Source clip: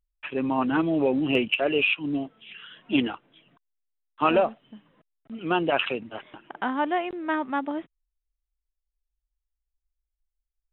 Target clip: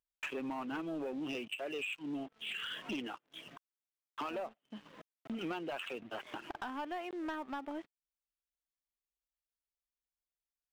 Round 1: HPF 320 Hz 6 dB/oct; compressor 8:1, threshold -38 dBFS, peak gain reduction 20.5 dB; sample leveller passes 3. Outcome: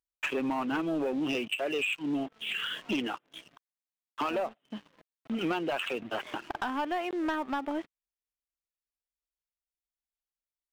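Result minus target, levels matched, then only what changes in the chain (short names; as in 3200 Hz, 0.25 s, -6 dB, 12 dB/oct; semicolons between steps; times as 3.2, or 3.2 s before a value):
compressor: peak gain reduction -9 dB
change: compressor 8:1, threshold -48 dBFS, peak gain reduction 29 dB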